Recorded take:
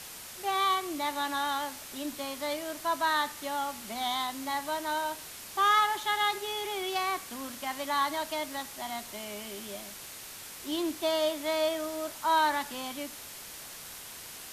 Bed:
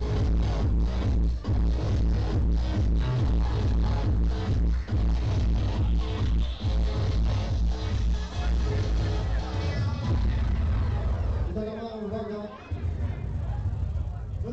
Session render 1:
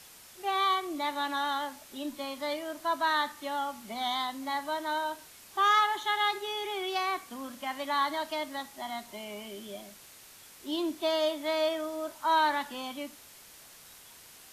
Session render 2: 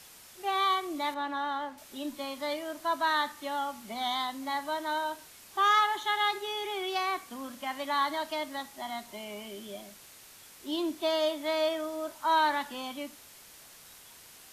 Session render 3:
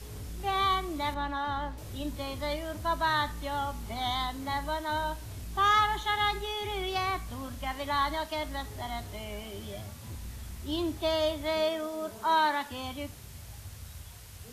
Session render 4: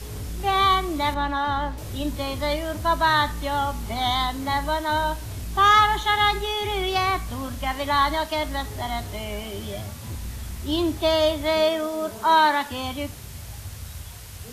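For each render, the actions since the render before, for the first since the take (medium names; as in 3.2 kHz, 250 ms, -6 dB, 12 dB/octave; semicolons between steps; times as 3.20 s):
noise print and reduce 8 dB
1.14–1.78 s: low-pass 1.6 kHz 6 dB/octave
add bed -16.5 dB
trim +8 dB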